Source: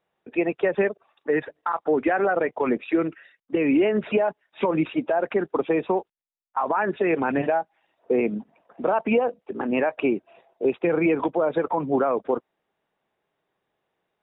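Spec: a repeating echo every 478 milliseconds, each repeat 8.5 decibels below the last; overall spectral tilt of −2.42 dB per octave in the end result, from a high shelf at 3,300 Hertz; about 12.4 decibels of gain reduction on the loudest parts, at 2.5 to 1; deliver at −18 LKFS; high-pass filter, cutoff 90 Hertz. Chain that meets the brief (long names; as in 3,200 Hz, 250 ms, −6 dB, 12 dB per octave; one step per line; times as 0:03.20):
high-pass filter 90 Hz
high-shelf EQ 3,300 Hz −8.5 dB
downward compressor 2.5 to 1, threshold −37 dBFS
repeating echo 478 ms, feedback 38%, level −8.5 dB
level +18 dB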